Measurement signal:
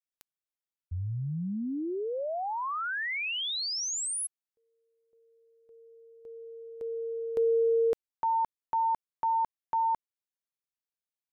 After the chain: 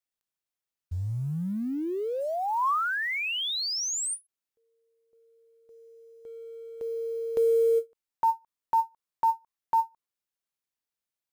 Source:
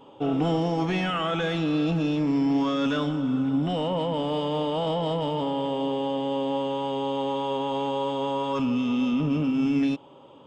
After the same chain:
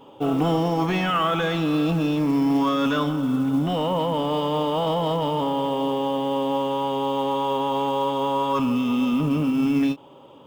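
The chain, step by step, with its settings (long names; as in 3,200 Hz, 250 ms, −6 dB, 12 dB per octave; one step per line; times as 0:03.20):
dynamic equaliser 1,100 Hz, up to +6 dB, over −44 dBFS, Q 2.6
floating-point word with a short mantissa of 4 bits
every ending faded ahead of time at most 410 dB per second
level +2.5 dB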